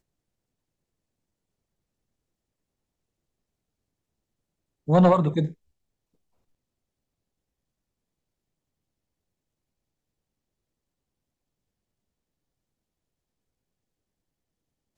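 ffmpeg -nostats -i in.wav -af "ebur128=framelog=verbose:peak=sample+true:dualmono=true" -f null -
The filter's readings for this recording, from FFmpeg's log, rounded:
Integrated loudness:
  I:         -17.8 LUFS
  Threshold: -29.1 LUFS
Loudness range:
  LRA:         5.6 LU
  Threshold: -44.4 LUFS
  LRA low:   -29.0 LUFS
  LRA high:  -23.5 LUFS
Sample peak:
  Peak:       -8.4 dBFS
True peak:
  Peak:       -8.4 dBFS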